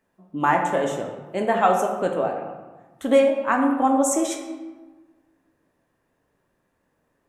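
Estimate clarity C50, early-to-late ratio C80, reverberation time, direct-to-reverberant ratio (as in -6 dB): 5.0 dB, 7.0 dB, 1.3 s, 2.0 dB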